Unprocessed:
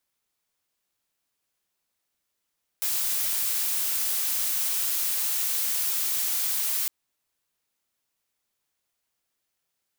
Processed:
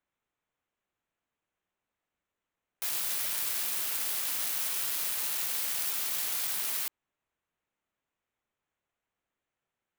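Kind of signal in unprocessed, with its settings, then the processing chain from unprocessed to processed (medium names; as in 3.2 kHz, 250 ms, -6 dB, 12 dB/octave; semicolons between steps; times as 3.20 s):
noise blue, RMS -26.5 dBFS 4.06 s
local Wiener filter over 9 samples; treble shelf 11 kHz -2.5 dB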